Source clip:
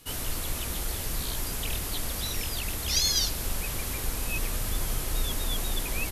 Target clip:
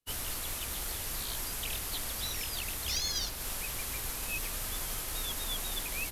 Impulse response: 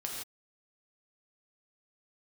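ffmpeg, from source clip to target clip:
-filter_complex "[0:a]acrossover=split=110|270|680|2300[link_01][link_02][link_03][link_04][link_05];[link_01]acompressor=threshold=-40dB:ratio=4[link_06];[link_02]acompressor=threshold=-54dB:ratio=4[link_07];[link_03]acompressor=threshold=-53dB:ratio=4[link_08];[link_04]acompressor=threshold=-44dB:ratio=4[link_09];[link_05]acompressor=threshold=-33dB:ratio=4[link_10];[link_06][link_07][link_08][link_09][link_10]amix=inputs=5:normalize=0,acrusher=bits=5:mode=log:mix=0:aa=0.000001,agate=range=-33dB:threshold=-33dB:ratio=3:detection=peak"

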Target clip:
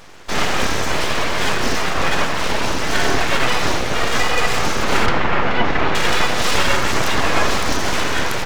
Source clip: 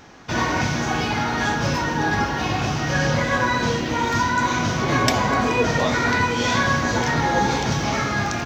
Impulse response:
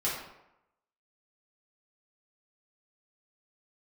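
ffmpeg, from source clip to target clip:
-filter_complex "[0:a]aeval=exprs='abs(val(0))':channel_layout=same,asettb=1/sr,asplit=3[link_01][link_02][link_03];[link_01]atrim=end=5.064[link_04];[link_02]atrim=start=5.06:end=5.95,asetpts=PTS-STARTPTS,afade=type=in:duration=0.004:curve=qsin,afade=type=out:start_time=0.886:duration=0.004:curve=qsin,lowpass=2700[link_05];[link_03]atrim=start=5.946[link_06];[link_04][link_05]acrossfade=duration=0.004:curve1=hsin:curve2=qsin[link_07];[link_07][link_06]acrossfade=duration=0.004:curve1=qsin:curve2=hsin,asplit=2[link_08][link_09];[1:a]atrim=start_sample=2205,adelay=71[link_10];[link_09][link_10]afir=irnorm=-1:irlink=0,volume=-19.5dB[link_11];[link_08][link_11]amix=inputs=2:normalize=0,volume=5.5dB"

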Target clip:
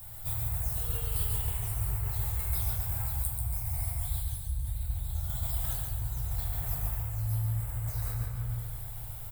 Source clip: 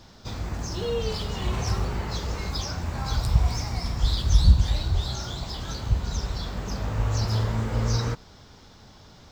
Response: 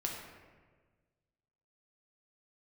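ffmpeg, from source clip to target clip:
-filter_complex "[0:a]acrossover=split=220|930[link_01][link_02][link_03];[link_02]asoftclip=type=tanh:threshold=-35.5dB[link_04];[link_01][link_04][link_03]amix=inputs=3:normalize=0,firequalizer=gain_entry='entry(120,0);entry(180,-23);entry(720,-6);entry(1100,-11);entry(2200,-10);entry(5800,-27);entry(8700,7)':delay=0.05:min_phase=1[link_05];[1:a]atrim=start_sample=2205[link_06];[link_05][link_06]afir=irnorm=-1:irlink=0,areverse,acompressor=threshold=-34dB:ratio=10,areverse,aemphasis=mode=production:type=75fm,aecho=1:1:138|276|414|552|690:0.596|0.262|0.115|0.0507|0.0223,volume=4dB"

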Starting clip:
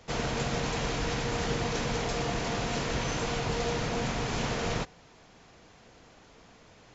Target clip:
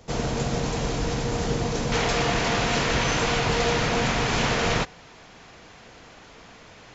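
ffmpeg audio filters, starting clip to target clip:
ffmpeg -i in.wav -af "asetnsamples=nb_out_samples=441:pad=0,asendcmd='1.92 equalizer g 4.5',equalizer=frequency=2100:width_type=o:width=2.6:gain=-6.5,volume=6dB" out.wav

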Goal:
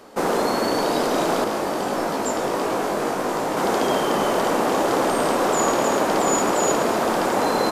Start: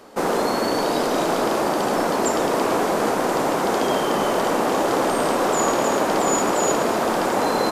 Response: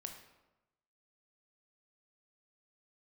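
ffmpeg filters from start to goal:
-filter_complex "[0:a]asettb=1/sr,asplit=3[link_01][link_02][link_03];[link_01]atrim=end=1.444[link_04];[link_02]atrim=start=1.44:end=3.57,asetpts=PTS-STARTPTS,afade=type=in:duration=0.004:curve=qsin,afade=type=out:start_time=2.126:duration=0.004:curve=qsin,flanger=delay=18.5:depth=2.7:speed=1.5[link_05];[link_03]atrim=start=3.566[link_06];[link_04][link_05]acrossfade=duration=0.004:curve1=hsin:curve2=qsin[link_07];[link_07][link_06]acrossfade=duration=0.004:curve1=qsin:curve2=hsin"

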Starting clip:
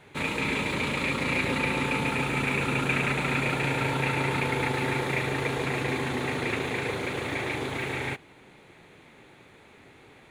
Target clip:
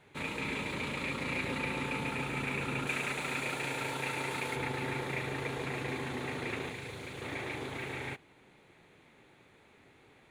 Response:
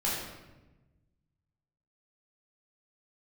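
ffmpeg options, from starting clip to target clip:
-filter_complex "[0:a]asettb=1/sr,asplit=3[link_01][link_02][link_03];[link_01]atrim=end=2.874[link_04];[link_02]atrim=start=2.87:end=4.56,asetpts=PTS-STARTPTS,afade=type=in:duration=0.004:curve=qsin,afade=type=out:start_time=1.686:duration=0.004:curve=qsin,bass=frequency=250:gain=-7,treble=frequency=4000:gain=7[link_05];[link_03]atrim=start=4.556[link_06];[link_04][link_05]acrossfade=duration=0.004:curve1=hsin:curve2=qsin[link_07];[link_07][link_06]acrossfade=duration=0.004:curve1=qsin:curve2=hsin,asettb=1/sr,asplit=3[link_08][link_09][link_10];[link_08]atrim=end=6.694[link_11];[link_09]atrim=start=6.69:end=7.22,asetpts=PTS-STARTPTS,afade=type=in:duration=0.004:curve=qsin,afade=type=out:start_time=0.526:duration=0.004:curve=qsin,acrossover=split=160|3000[link_12][link_13][link_14];[link_13]acompressor=threshold=-35dB:ratio=6[link_15];[link_12][link_15][link_14]amix=inputs=3:normalize=0[link_16];[link_10]atrim=start=7.216[link_17];[link_11][link_16]acrossfade=duration=0.004:curve1=hsin:curve2=qsin[link_18];[link_18][link_17]acrossfade=duration=0.004:curve1=qsin:curve2=hsin,volume=-8dB"

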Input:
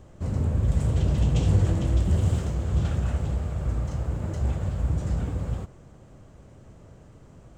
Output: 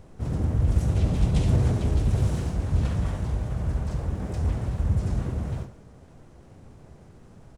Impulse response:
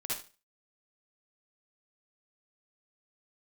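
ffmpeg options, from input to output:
-filter_complex "[0:a]aeval=exprs='0.211*(abs(mod(val(0)/0.211+3,4)-2)-1)':channel_layout=same,asplit=4[link_01][link_02][link_03][link_04];[link_02]asetrate=33038,aresample=44100,atempo=1.33484,volume=-2dB[link_05];[link_03]asetrate=37084,aresample=44100,atempo=1.18921,volume=-3dB[link_06];[link_04]asetrate=55563,aresample=44100,atempo=0.793701,volume=0dB[link_07];[link_01][link_05][link_06][link_07]amix=inputs=4:normalize=0,asplit=2[link_08][link_09];[1:a]atrim=start_sample=2205[link_10];[link_09][link_10]afir=irnorm=-1:irlink=0,volume=-12dB[link_11];[link_08][link_11]amix=inputs=2:normalize=0,volume=-6dB"

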